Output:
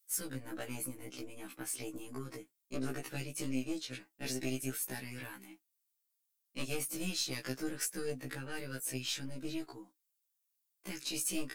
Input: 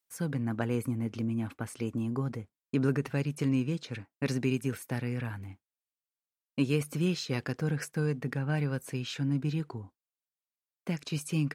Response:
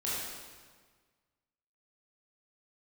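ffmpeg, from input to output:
-filter_complex "[0:a]highpass=200,equalizer=f=310:w=7.8:g=11.5,asplit=2[a][b];[b]acompressor=threshold=-38dB:ratio=20,volume=-1.5dB[c];[a][c]amix=inputs=2:normalize=0,aeval=exprs='0.224*(cos(1*acos(clip(val(0)/0.224,-1,1)))-cos(1*PI/2))+0.00708*(cos(2*acos(clip(val(0)/0.224,-1,1)))-cos(2*PI/2))+0.0355*(cos(4*acos(clip(val(0)/0.224,-1,1)))-cos(4*PI/2))+0.00141*(cos(5*acos(clip(val(0)/0.224,-1,1)))-cos(5*PI/2))+0.00158*(cos(8*acos(clip(val(0)/0.224,-1,1)))-cos(8*PI/2))':c=same,aeval=exprs='clip(val(0),-1,0.106)':c=same,flanger=delay=4.3:depth=3.5:regen=56:speed=1.4:shape=triangular,crystalizer=i=6:c=0,afftfilt=real='re*1.73*eq(mod(b,3),0)':imag='im*1.73*eq(mod(b,3),0)':win_size=2048:overlap=0.75,volume=-6.5dB"

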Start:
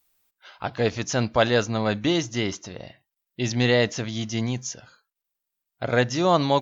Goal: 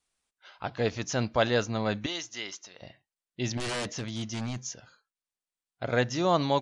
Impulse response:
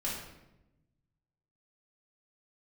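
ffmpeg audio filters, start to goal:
-filter_complex "[0:a]asettb=1/sr,asplit=3[a][b][c];[a]atrim=end=2.064[d];[b]atrim=start=2.06:end=2.82,asetpts=PTS-STARTPTS,afade=t=in:d=0.004:c=qsin,afade=t=out:st=0.756:d=0.004:c=qsin,highpass=f=1.5k:p=1[e];[c]atrim=start=2.816[f];[d][e]acrossfade=d=0.004:c1=hsin:c2=qsin[g];[g][f]acrossfade=d=0.004:c1=qsin:c2=hsin,asettb=1/sr,asplit=3[h][i][j];[h]atrim=end=3.574[k];[i]atrim=start=3.57:end=4.59,asetpts=PTS-STARTPTS,afade=t=in:d=0.004:c=qsin,afade=t=out:st=1.016:d=0.004:c=qsin,aeval=exprs='0.0794*(abs(mod(val(0)/0.0794+3,4)-2)-1)':c=same[l];[j]atrim=start=4.586[m];[k][l]acrossfade=d=0.004:c1=hsin:c2=qsin[n];[n][m]acrossfade=d=0.004:c1=qsin:c2=hsin,aresample=22050,aresample=44100,volume=-5dB"

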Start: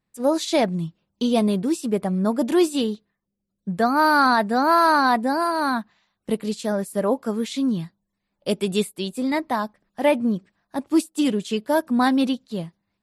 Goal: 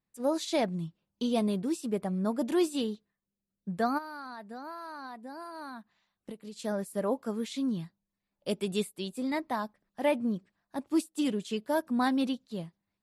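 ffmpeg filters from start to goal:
-filter_complex "[0:a]asplit=3[a][b][c];[a]afade=t=out:st=3.97:d=0.02[d];[b]acompressor=threshold=-31dB:ratio=12,afade=t=in:st=3.97:d=0.02,afade=t=out:st=6.55:d=0.02[e];[c]afade=t=in:st=6.55:d=0.02[f];[d][e][f]amix=inputs=3:normalize=0,volume=-8.5dB"

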